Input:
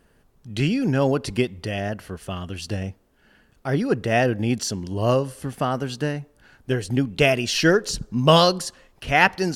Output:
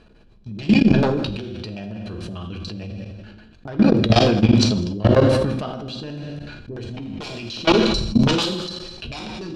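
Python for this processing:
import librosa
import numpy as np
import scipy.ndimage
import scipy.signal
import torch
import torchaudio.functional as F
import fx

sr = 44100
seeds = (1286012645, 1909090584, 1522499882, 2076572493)

p1 = fx.low_shelf(x, sr, hz=94.0, db=3.5)
p2 = fx.small_body(p1, sr, hz=(2400.0, 4000.0), ring_ms=50, db=18)
p3 = fx.fold_sine(p2, sr, drive_db=16, ceiling_db=0.5)
p4 = fx.filter_lfo_lowpass(p3, sr, shape='square', hz=6.8, low_hz=330.0, high_hz=4100.0, q=1.3)
p5 = p4 + fx.echo_single(p4, sr, ms=201, db=-17.5, dry=0)
p6 = fx.rev_fdn(p5, sr, rt60_s=0.84, lf_ratio=1.0, hf_ratio=1.0, size_ms=28.0, drr_db=2.5)
p7 = fx.level_steps(p6, sr, step_db=20)
p8 = fx.peak_eq(p7, sr, hz=2000.0, db=-9.0, octaves=0.46)
p9 = fx.sustainer(p8, sr, db_per_s=35.0)
y = p9 * 10.0 ** (-11.5 / 20.0)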